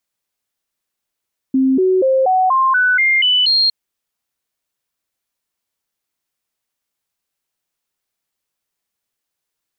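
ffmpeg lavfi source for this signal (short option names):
-f lavfi -i "aevalsrc='0.299*clip(min(mod(t,0.24),0.24-mod(t,0.24))/0.005,0,1)*sin(2*PI*264*pow(2,floor(t/0.24)/2)*mod(t,0.24))':d=2.16:s=44100"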